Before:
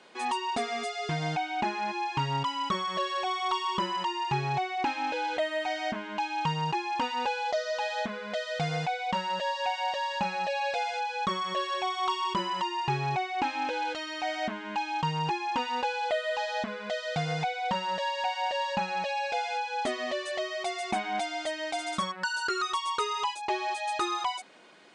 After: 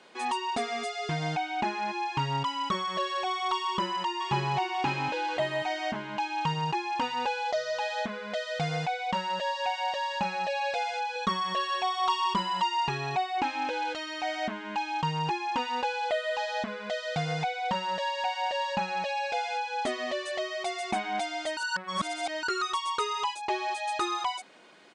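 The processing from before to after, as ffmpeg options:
-filter_complex "[0:a]asplit=2[a][b];[b]afade=t=in:st=3.66:d=0.01,afade=t=out:st=4.54:d=0.01,aecho=0:1:540|1080|1620|2160|2700|3240:0.562341|0.281171|0.140585|0.0702927|0.0351463|0.0175732[c];[a][c]amix=inputs=2:normalize=0,asettb=1/sr,asplit=3[d][e][f];[d]atrim=end=11.154[g];[e]atrim=start=11.15:end=13.38,asetpts=PTS-STARTPTS,afade=t=in:d=0.004:c=qsin,afade=t=out:st=2.226:d=0.004:c=qsin,aecho=1:1:4.3:0.65,atrim=end_sample=98343[h];[f]atrim=start=13.376[i];[g][h]acrossfade=d=0.004:c1=hsin:c2=qsin[j];[j][i]acrossfade=d=0.004:c1=qsin:c2=hsin,asplit=3[k][l][m];[k]atrim=end=21.572[n];[l]atrim=start=21.568:end=22.432,asetpts=PTS-STARTPTS,areverse[o];[m]atrim=start=22.428[p];[n][o]acrossfade=d=0.004:c1=hsin:c2=hsin[q];[q][p]acrossfade=d=0.004:c1=hsin:c2=hsin"

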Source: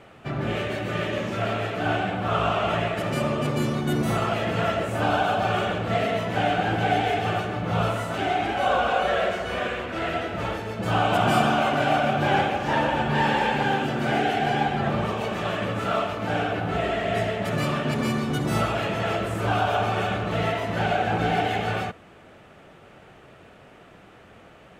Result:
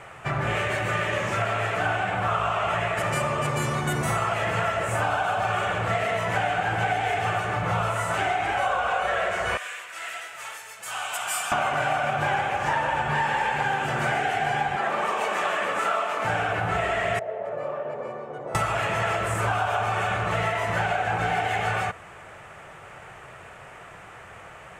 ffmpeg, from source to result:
-filter_complex "[0:a]asettb=1/sr,asplit=3[a][b][c];[a]atrim=end=9.574[d];[b]atrim=start=9.57:end=11.52,asetpts=PTS-STARTPTS,afade=t=in:d=0.004:c=qsin,afade=t=out:st=1.946:d=0.004:c=qsin,aderivative[e];[c]atrim=start=11.516[f];[d][e]acrossfade=d=0.004:c1=hsin:c2=qsin[g];[g][f]acrossfade=d=0.004:c1=qsin:c2=hsin,asettb=1/sr,asplit=3[h][i][j];[h]atrim=end=14.764[k];[i]atrim=start=14.76:end=16.25,asetpts=PTS-STARTPTS,afade=t=in:d=0.004:c=qsin,afade=t=out:st=1.486:d=0.004:c=qsin,highpass=f=230:w=0.5412,highpass=f=230:w=1.3066[l];[j]atrim=start=16.246[m];[k][l]acrossfade=d=0.004:c1=hsin:c2=qsin[n];[n][m]acrossfade=d=0.004:c1=qsin:c2=hsin,asettb=1/sr,asplit=3[o][p][q];[o]atrim=end=17.194[r];[p]atrim=start=17.19:end=18.55,asetpts=PTS-STARTPTS,afade=t=in:d=0.004:c=qsin,afade=t=out:st=1.356:d=0.004:c=qsin,bandpass=f=530:t=q:w=3.8[s];[q]atrim=start=18.546[t];[r][s]acrossfade=d=0.004:c1=hsin:c2=qsin[u];[u][t]acrossfade=d=0.004:c1=qsin:c2=hsin,equalizer=f=125:t=o:w=1:g=3,equalizer=f=250:t=o:w=1:g=-11,equalizer=f=1k:t=o:w=1:g=6,equalizer=f=2k:t=o:w=1:g=6,equalizer=f=4k:t=o:w=1:g=-5,equalizer=f=8k:t=o:w=1:g=10,acompressor=threshold=-25dB:ratio=6,volume=3dB"

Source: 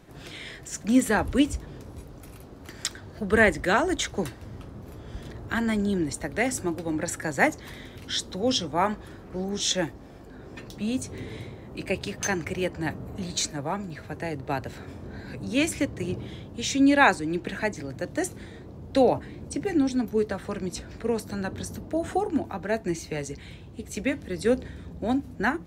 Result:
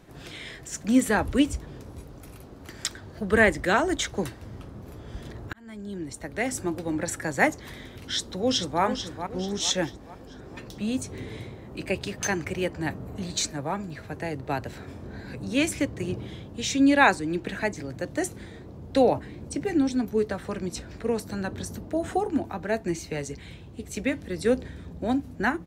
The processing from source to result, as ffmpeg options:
-filter_complex "[0:a]asplit=2[a][b];[b]afade=t=in:st=8.03:d=0.01,afade=t=out:st=8.82:d=0.01,aecho=0:1:440|880|1320|1760|2200:0.375837|0.169127|0.0761071|0.0342482|0.0154117[c];[a][c]amix=inputs=2:normalize=0,asplit=2[d][e];[d]atrim=end=5.53,asetpts=PTS-STARTPTS,afade=t=out:st=5.526:d=0.004:c=hsin[f];[e]atrim=start=5.53,asetpts=PTS-STARTPTS,afade=t=in:d=1.21[g];[f][g]concat=n=2:v=0:a=1"

